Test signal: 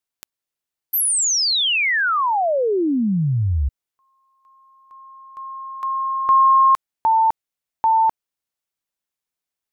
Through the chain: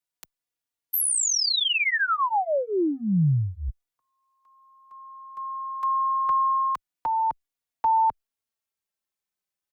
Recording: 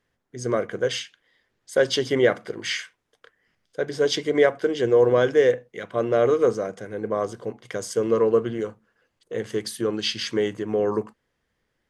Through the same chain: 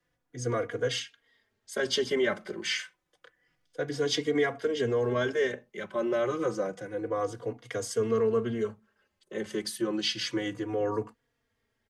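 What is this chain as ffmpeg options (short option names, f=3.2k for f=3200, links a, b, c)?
-filter_complex "[0:a]acrossover=split=260|810|2100[a][b][c][d];[b]alimiter=limit=-21dB:level=0:latency=1[e];[a][e][c][d]amix=inputs=4:normalize=0,acrossover=split=130[f][g];[g]acompressor=threshold=-19dB:ratio=4:attack=4.7:release=83:knee=2.83:detection=peak[h];[f][h]amix=inputs=2:normalize=0,asplit=2[i][j];[j]adelay=3.6,afreqshift=-0.29[k];[i][k]amix=inputs=2:normalize=1"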